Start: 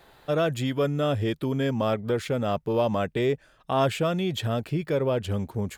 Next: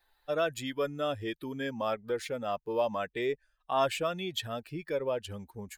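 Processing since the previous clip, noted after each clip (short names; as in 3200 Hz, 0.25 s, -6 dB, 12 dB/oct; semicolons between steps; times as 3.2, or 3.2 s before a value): per-bin expansion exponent 1.5; bell 120 Hz -14 dB 2.7 oct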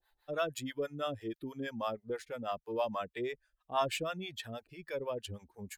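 harmonic tremolo 6.2 Hz, depth 100%, crossover 530 Hz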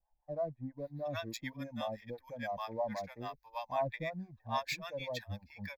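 bands offset in time lows, highs 0.77 s, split 840 Hz; in parallel at -12 dB: backlash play -46.5 dBFS; on the sum: fixed phaser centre 2000 Hz, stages 8; gain +2 dB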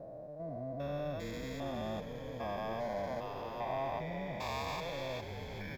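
stepped spectrum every 0.4 s; on a send: frequency-shifting echo 0.409 s, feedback 60%, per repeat -100 Hz, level -8.5 dB; on the sum: gain +5.5 dB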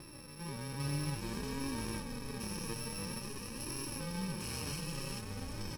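FFT order left unsorted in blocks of 64 samples; flange 0.53 Hz, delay 2.8 ms, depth 4.1 ms, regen +41%; air absorption 61 m; gain +9 dB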